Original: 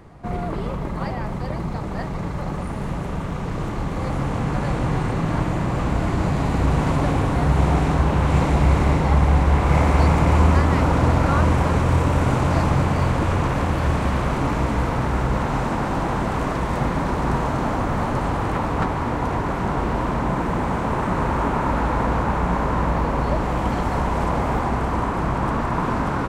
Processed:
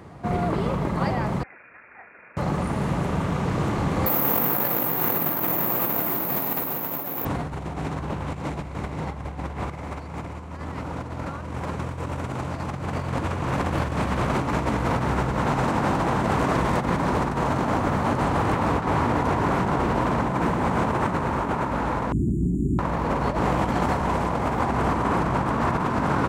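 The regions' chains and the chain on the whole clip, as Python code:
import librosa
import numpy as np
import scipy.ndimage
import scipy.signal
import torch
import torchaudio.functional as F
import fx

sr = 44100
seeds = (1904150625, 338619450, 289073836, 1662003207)

y = fx.chain(x, sr, fx.differentiator(),
    fx.freq_invert(carrier_hz=2600), at=(1.43, 2.37))
y = fx.chain(y, sr, fx.highpass(hz=260.0, slope=12),
    fx.resample_bad(factor=3, down='none', up='zero_stuff'), at=(4.06, 7.25))
y = fx.chain(y, sr, fx.brickwall_bandstop(low_hz=400.0, high_hz=6700.0),
    fx.high_shelf(hz=6200.0, db=-11.0), at=(22.12, 22.79))
y = scipy.signal.sosfilt(scipy.signal.butter(2, 78.0, 'highpass', fs=sr, output='sos'), y)
y = fx.over_compress(y, sr, threshold_db=-24.0, ratio=-0.5)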